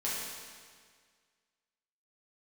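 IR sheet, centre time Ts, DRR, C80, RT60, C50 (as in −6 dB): 114 ms, −8.0 dB, 0.5 dB, 1.8 s, −1.5 dB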